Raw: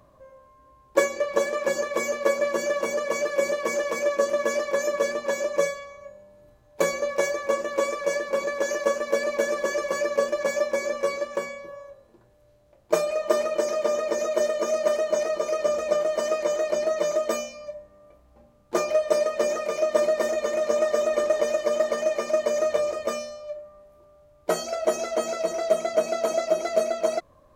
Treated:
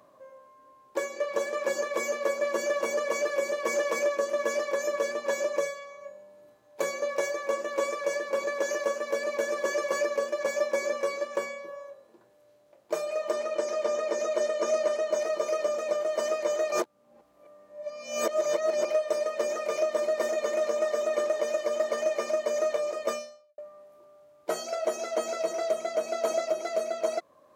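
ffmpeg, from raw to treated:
-filter_complex "[0:a]asettb=1/sr,asplit=3[s0][s1][s2];[s0]atrim=end=13.314[s3];[s1]atrim=start=13.31:end=15.12,asetpts=PTS-STARTPTS,afade=t=in:d=0.004:c=qsin,afade=t=out:st=1.806:d=0.004:c=qsin,lowpass=9100[s4];[s2]atrim=start=15.116[s5];[s3][s4]acrossfade=d=0.004:c1=hsin:c2=qsin[s6];[s6][s5]acrossfade=d=0.004:c1=qsin:c2=hsin,asplit=4[s7][s8][s9][s10];[s7]atrim=end=16.722[s11];[s8]atrim=start=16.718:end=18.852,asetpts=PTS-STARTPTS,areverse[s12];[s9]atrim=start=18.848:end=23.58,asetpts=PTS-STARTPTS,afade=t=out:st=4.242:d=0.49:c=qua[s13];[s10]atrim=start=23.58,asetpts=PTS-STARTPTS,afade=t=in:d=0.004:c=hsin[s14];[s11][s12]acrossfade=d=0.004:c1=hsin:c2=hsin[s15];[s13][s14]concat=n=2:v=0:a=1[s16];[s15][s16]acrossfade=d=0.004:c1=hsin:c2=hsin,alimiter=limit=0.15:level=0:latency=1:release=478,highpass=260"

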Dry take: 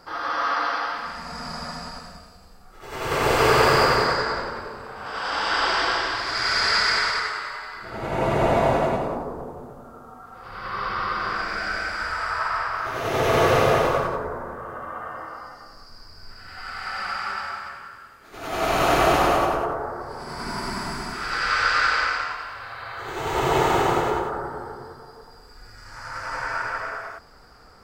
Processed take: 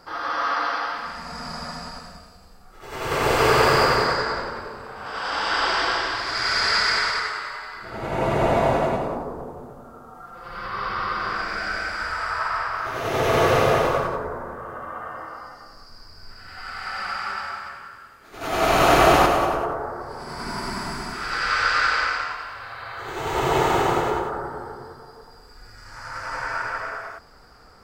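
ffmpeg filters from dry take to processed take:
-filter_complex "[0:a]asettb=1/sr,asplit=3[s0][s1][s2];[s0]atrim=end=10.144[s3];[s1]atrim=start=10.14:end=10.66,asetpts=PTS-STARTPTS,afade=t=in:d=0.004:c=qsin,afade=t=out:st=0.516:d=0.004:c=qsin,aecho=1:1:5.8:0.7,atrim=end_sample=22932[s4];[s2]atrim=start=10.656[s5];[s3][s4]acrossfade=d=0.004:c1=hsin:c2=qsin[s6];[s6][s5]acrossfade=d=0.004:c1=qsin:c2=hsin,asplit=3[s7][s8][s9];[s7]atrim=end=18.412[s10];[s8]atrim=start=18.408:end=19.262,asetpts=PTS-STARTPTS,volume=1.5[s11];[s9]atrim=start=19.258[s12];[s10][s11]acrossfade=d=0.004:c1=hsin:c2=hsin[s13];[s13][s12]acrossfade=d=0.004:c1=hsin:c2=hsin"

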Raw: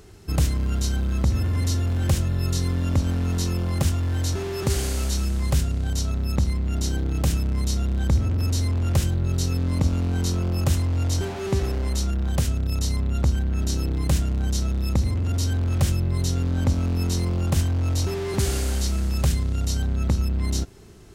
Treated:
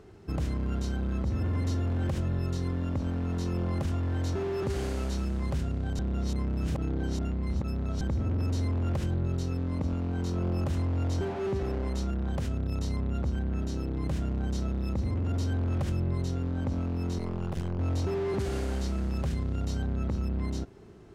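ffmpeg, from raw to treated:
-filter_complex "[0:a]asettb=1/sr,asplit=3[s0][s1][s2];[s0]atrim=end=17.184[s3];[s1]atrim=start=17.18:end=17.79,asetpts=PTS-STARTPTS,afade=t=in:d=0.004:c=qsin,afade=t=out:st=0.606:d=0.004:c=qsin,aeval=exprs='max(val(0),0)':c=same[s4];[s2]atrim=start=17.786[s5];[s3][s4]acrossfade=d=0.004:c1=hsin:c2=qsin[s6];[s6][s5]acrossfade=d=0.004:c1=qsin:c2=hsin,asplit=3[s7][s8][s9];[s7]atrim=end=5.992[s10];[s8]atrim=start=5.988:end=8.012,asetpts=PTS-STARTPTS,areverse[s11];[s9]atrim=start=8.008[s12];[s10][s11]acrossfade=d=0.004:c1=hsin:c2=hsin[s13];[s13][s12]acrossfade=d=0.004:c1=hsin:c2=hsin,lowpass=f=1100:p=1,lowshelf=f=94:g=-11,alimiter=limit=0.0794:level=0:latency=1:release=50"

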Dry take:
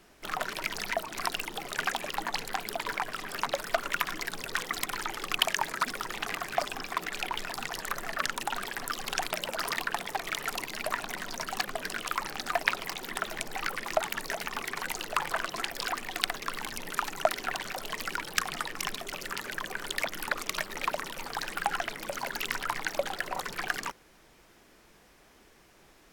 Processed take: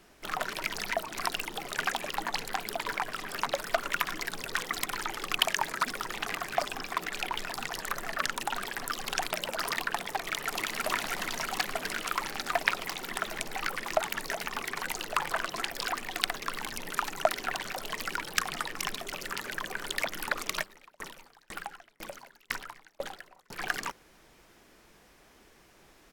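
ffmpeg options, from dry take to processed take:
-filter_complex "[0:a]asplit=2[s0][s1];[s1]afade=t=in:st=10.2:d=0.01,afade=t=out:st=10.83:d=0.01,aecho=0:1:320|640|960|1280|1600|1920|2240|2560|2880|3200|3520|3840:0.794328|0.635463|0.50837|0.406696|0.325357|0.260285|0.208228|0.166583|0.133266|0.106613|0.0852903|0.0682323[s2];[s0][s2]amix=inputs=2:normalize=0,asplit=3[s3][s4][s5];[s3]afade=t=out:st=20.62:d=0.02[s6];[s4]aeval=exprs='val(0)*pow(10,-34*if(lt(mod(2*n/s,1),2*abs(2)/1000),1-mod(2*n/s,1)/(2*abs(2)/1000),(mod(2*n/s,1)-2*abs(2)/1000)/(1-2*abs(2)/1000))/20)':c=same,afade=t=in:st=20.62:d=0.02,afade=t=out:st=23.59:d=0.02[s7];[s5]afade=t=in:st=23.59:d=0.02[s8];[s6][s7][s8]amix=inputs=3:normalize=0"

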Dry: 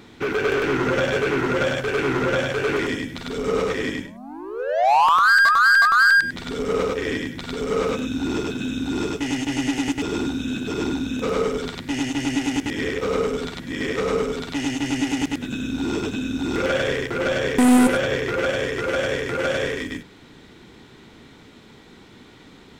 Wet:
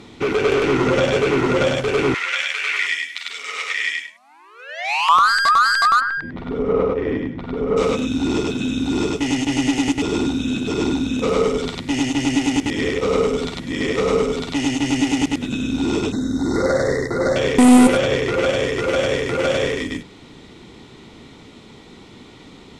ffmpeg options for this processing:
-filter_complex "[0:a]asettb=1/sr,asplit=3[s0][s1][s2];[s0]atrim=end=2.144[s3];[s1]atrim=start=2.14:end=5.09,asetpts=PTS-STARTPTS,afade=t=in:d=0.004:c=qsin,afade=t=out:st=2.946:d=0.004:c=qsin,highpass=f=2000:t=q:w=2.4[s4];[s2]atrim=start=5.086[s5];[s3][s4]acrossfade=d=0.004:c1=hsin:c2=qsin[s6];[s6][s5]acrossfade=d=0.004:c1=qsin:c2=hsin,asplit=3[s7][s8][s9];[s7]afade=t=out:st=5.99:d=0.02[s10];[s8]lowpass=1400,afade=t=in:st=5.99:d=0.02,afade=t=out:st=7.76:d=0.02[s11];[s9]afade=t=in:st=7.76:d=0.02[s12];[s10][s11][s12]amix=inputs=3:normalize=0,asettb=1/sr,asplit=3[s13][s14][s15];[s13]atrim=end=16.124[s16];[s14]atrim=start=16.12:end=17.36,asetpts=PTS-STARTPTS,afade=t=in:d=0.004:c=qsin,afade=t=out:st=1.236:d=0.004:c=qsin,asuperstop=centerf=2800:order=20:qfactor=1.7[s17];[s15]atrim=start=17.356[s18];[s16][s17]acrossfade=d=0.004:c1=hsin:c2=qsin[s19];[s19][s18]acrossfade=d=0.004:c1=qsin:c2=hsin,lowpass=f=11000:w=0.5412,lowpass=f=11000:w=1.3066,equalizer=f=1600:w=5.3:g=-10,volume=1.68"

